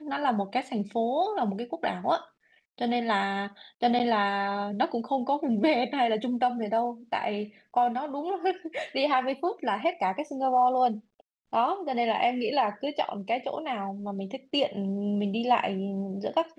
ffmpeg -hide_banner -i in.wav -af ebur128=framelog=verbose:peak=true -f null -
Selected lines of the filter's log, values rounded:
Integrated loudness:
  I:         -28.2 LUFS
  Threshold: -38.4 LUFS
Loudness range:
  LRA:         2.4 LU
  Threshold: -48.3 LUFS
  LRA low:   -29.5 LUFS
  LRA high:  -27.1 LUFS
True peak:
  Peak:      -11.8 dBFS